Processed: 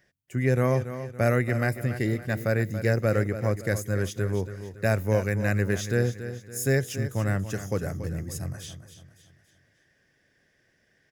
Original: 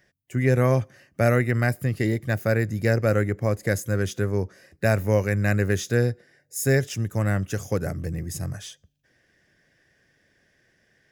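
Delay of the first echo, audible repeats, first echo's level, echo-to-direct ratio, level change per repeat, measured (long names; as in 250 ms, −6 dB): 282 ms, 4, −11.5 dB, −10.5 dB, −7.5 dB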